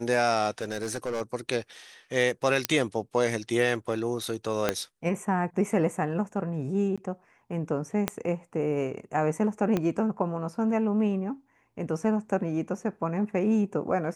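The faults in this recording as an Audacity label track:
0.580000	1.220000	clipped -26 dBFS
2.650000	2.650000	pop -6 dBFS
4.690000	4.690000	pop -9 dBFS
6.960000	6.980000	gap 16 ms
8.080000	8.080000	pop -10 dBFS
9.770000	9.770000	pop -14 dBFS

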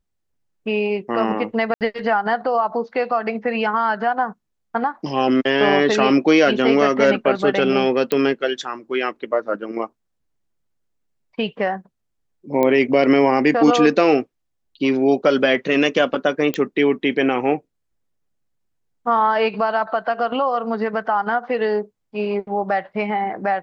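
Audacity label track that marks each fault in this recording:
1.740000	1.810000	gap 68 ms
8.120000	8.120000	pop -7 dBFS
12.630000	12.630000	pop -8 dBFS
16.540000	16.540000	pop -9 dBFS

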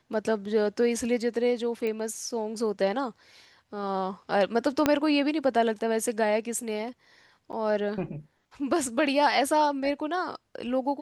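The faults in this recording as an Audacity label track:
1.870000	1.870000	pop -21 dBFS
4.860000	4.860000	pop -8 dBFS
7.520000	7.530000	gap 8.4 ms

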